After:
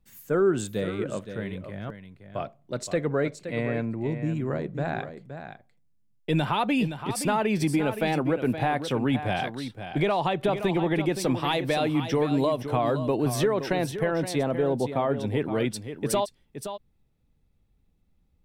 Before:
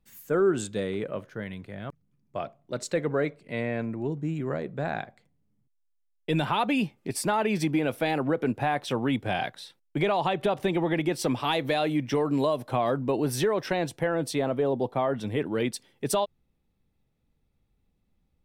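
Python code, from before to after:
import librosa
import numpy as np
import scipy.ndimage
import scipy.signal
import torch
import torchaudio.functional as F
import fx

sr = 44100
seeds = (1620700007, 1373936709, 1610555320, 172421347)

p1 = fx.low_shelf(x, sr, hz=150.0, db=5.5)
y = p1 + fx.echo_single(p1, sr, ms=520, db=-10.0, dry=0)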